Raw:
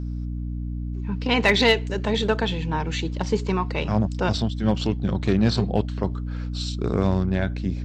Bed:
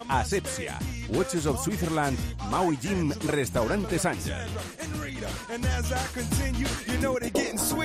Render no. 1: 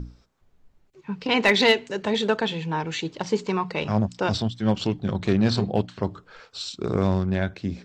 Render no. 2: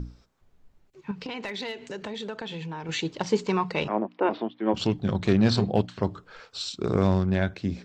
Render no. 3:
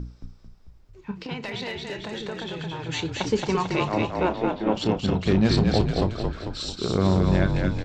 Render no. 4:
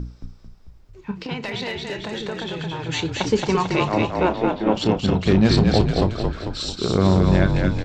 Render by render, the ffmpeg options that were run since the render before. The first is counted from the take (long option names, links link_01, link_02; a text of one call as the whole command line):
ffmpeg -i in.wav -af "bandreject=frequency=60:width_type=h:width=6,bandreject=frequency=120:width_type=h:width=6,bandreject=frequency=180:width_type=h:width=6,bandreject=frequency=240:width_type=h:width=6,bandreject=frequency=300:width_type=h:width=6" out.wav
ffmpeg -i in.wav -filter_complex "[0:a]asettb=1/sr,asplit=3[link_01][link_02][link_03];[link_01]atrim=end=1.114[link_04];[link_02]atrim=start=1.11:end=2.89,asetpts=PTS-STARTPTS,afade=type=in:duration=0.004:curve=qsin,afade=type=out:start_time=1.776:duration=0.004:curve=qsin,acompressor=threshold=-32dB:ratio=6:attack=3.2:release=140:knee=1:detection=peak[link_05];[link_03]atrim=start=2.886[link_06];[link_04][link_05]acrossfade=duration=0.004:curve1=hsin:curve2=qsin[link_07];[link_07][link_06]acrossfade=duration=0.004:curve1=qsin:curve2=hsin,asplit=3[link_08][link_09][link_10];[link_08]afade=type=out:start_time=3.87:duration=0.02[link_11];[link_09]highpass=frequency=270:width=0.5412,highpass=frequency=270:width=1.3066,equalizer=frequency=330:width_type=q:width=4:gain=7,equalizer=frequency=980:width_type=q:width=4:gain=3,equalizer=frequency=1500:width_type=q:width=4:gain=-5,lowpass=frequency=2400:width=0.5412,lowpass=frequency=2400:width=1.3066,afade=type=in:start_time=3.87:duration=0.02,afade=type=out:start_time=4.73:duration=0.02[link_12];[link_10]afade=type=in:start_time=4.73:duration=0.02[link_13];[link_11][link_12][link_13]amix=inputs=3:normalize=0" out.wav
ffmpeg -i in.wav -filter_complex "[0:a]asplit=2[link_01][link_02];[link_02]adelay=32,volume=-13dB[link_03];[link_01][link_03]amix=inputs=2:normalize=0,asplit=8[link_04][link_05][link_06][link_07][link_08][link_09][link_10][link_11];[link_05]adelay=222,afreqshift=-39,volume=-3dB[link_12];[link_06]adelay=444,afreqshift=-78,volume=-8.4dB[link_13];[link_07]adelay=666,afreqshift=-117,volume=-13.7dB[link_14];[link_08]adelay=888,afreqshift=-156,volume=-19.1dB[link_15];[link_09]adelay=1110,afreqshift=-195,volume=-24.4dB[link_16];[link_10]adelay=1332,afreqshift=-234,volume=-29.8dB[link_17];[link_11]adelay=1554,afreqshift=-273,volume=-35.1dB[link_18];[link_04][link_12][link_13][link_14][link_15][link_16][link_17][link_18]amix=inputs=8:normalize=0" out.wav
ffmpeg -i in.wav -af "volume=4dB" out.wav